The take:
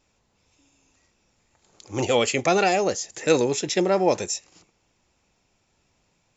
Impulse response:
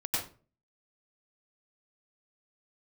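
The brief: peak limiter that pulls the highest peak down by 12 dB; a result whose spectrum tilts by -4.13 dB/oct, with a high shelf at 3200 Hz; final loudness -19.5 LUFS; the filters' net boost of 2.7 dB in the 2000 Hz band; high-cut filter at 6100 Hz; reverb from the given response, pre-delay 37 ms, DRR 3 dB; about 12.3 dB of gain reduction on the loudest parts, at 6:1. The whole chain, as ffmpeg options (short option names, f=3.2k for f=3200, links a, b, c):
-filter_complex "[0:a]lowpass=6.1k,equalizer=f=2k:t=o:g=7,highshelf=f=3.2k:g=-8.5,acompressor=threshold=-28dB:ratio=6,alimiter=level_in=2.5dB:limit=-24dB:level=0:latency=1,volume=-2.5dB,asplit=2[a][b];[1:a]atrim=start_sample=2205,adelay=37[c];[b][c]afir=irnorm=-1:irlink=0,volume=-9dB[d];[a][d]amix=inputs=2:normalize=0,volume=16dB"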